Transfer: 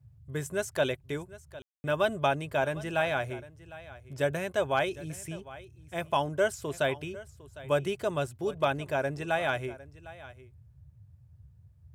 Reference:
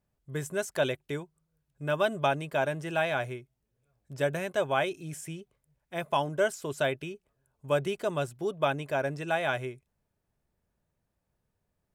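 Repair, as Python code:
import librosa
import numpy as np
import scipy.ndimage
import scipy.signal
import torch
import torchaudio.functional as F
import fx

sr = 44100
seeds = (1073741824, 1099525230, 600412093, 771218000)

y = fx.fix_declip(x, sr, threshold_db=-15.0)
y = fx.fix_ambience(y, sr, seeds[0], print_start_s=11.34, print_end_s=11.84, start_s=1.62, end_s=1.84)
y = fx.noise_reduce(y, sr, print_start_s=11.34, print_end_s=11.84, reduce_db=24.0)
y = fx.fix_echo_inverse(y, sr, delay_ms=755, level_db=-18.0)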